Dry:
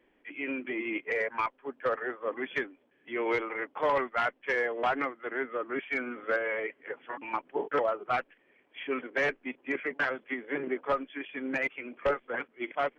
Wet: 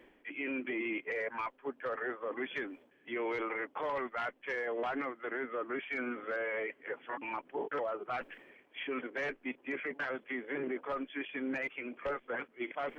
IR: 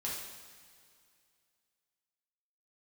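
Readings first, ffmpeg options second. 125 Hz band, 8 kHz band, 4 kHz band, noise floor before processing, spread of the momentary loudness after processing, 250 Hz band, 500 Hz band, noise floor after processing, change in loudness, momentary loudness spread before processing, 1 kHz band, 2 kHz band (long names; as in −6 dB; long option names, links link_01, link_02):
−6.0 dB, can't be measured, −4.5 dB, −69 dBFS, 5 LU, −3.0 dB, −5.5 dB, −67 dBFS, −5.5 dB, 8 LU, −7.0 dB, −5.5 dB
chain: -af "areverse,acompressor=mode=upward:threshold=-39dB:ratio=2.5,areverse,alimiter=level_in=4.5dB:limit=-24dB:level=0:latency=1:release=15,volume=-4.5dB"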